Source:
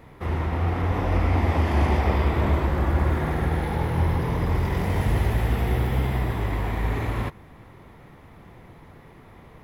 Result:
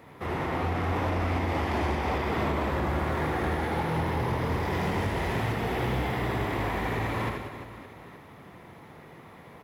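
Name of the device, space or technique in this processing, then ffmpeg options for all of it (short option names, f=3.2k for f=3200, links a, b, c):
limiter into clipper: -filter_complex "[0:a]acrossover=split=8100[a][b];[b]acompressor=threshold=-56dB:ratio=4:attack=1:release=60[c];[a][c]amix=inputs=2:normalize=0,highpass=70,lowshelf=f=140:g=-9.5,aecho=1:1:80|192|348.8|568.3|875.6:0.631|0.398|0.251|0.158|0.1,alimiter=limit=-17dB:level=0:latency=1:release=339,asoftclip=type=hard:threshold=-22.5dB"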